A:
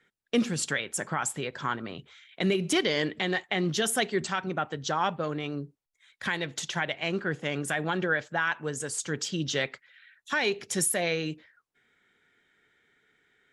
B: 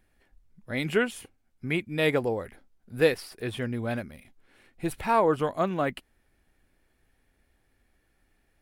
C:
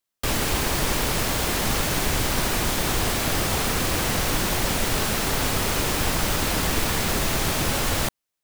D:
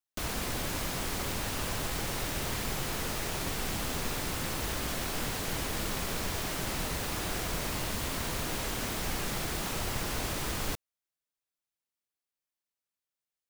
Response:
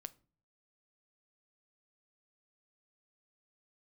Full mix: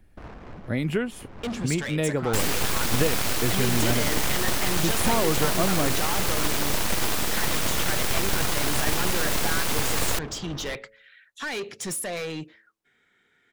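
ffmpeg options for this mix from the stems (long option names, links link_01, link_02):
-filter_complex "[0:a]bandreject=frequency=110:width_type=h:width=4,bandreject=frequency=220:width_type=h:width=4,bandreject=frequency=330:width_type=h:width=4,bandreject=frequency=440:width_type=h:width=4,bandreject=frequency=550:width_type=h:width=4,asoftclip=type=tanh:threshold=-29.5dB,adelay=1100,volume=2dB[link_01];[1:a]lowshelf=frequency=370:gain=11,acrossover=split=83|900[link_02][link_03][link_04];[link_02]acompressor=threshold=-48dB:ratio=4[link_05];[link_03]acompressor=threshold=-27dB:ratio=4[link_06];[link_04]acompressor=threshold=-37dB:ratio=4[link_07];[link_05][link_06][link_07]amix=inputs=3:normalize=0,volume=2.5dB,asplit=2[link_08][link_09];[2:a]aeval=exprs='abs(val(0))':channel_layout=same,adelay=2100,volume=0.5dB[link_10];[3:a]lowpass=3000,adynamicsmooth=sensitivity=5.5:basefreq=540,volume=-6.5dB,asplit=2[link_11][link_12];[link_12]volume=-5.5dB[link_13];[link_09]apad=whole_len=595204[link_14];[link_11][link_14]sidechaincompress=threshold=-49dB:ratio=8:attack=32:release=173[link_15];[4:a]atrim=start_sample=2205[link_16];[link_13][link_16]afir=irnorm=-1:irlink=0[link_17];[link_01][link_08][link_10][link_15][link_17]amix=inputs=5:normalize=0"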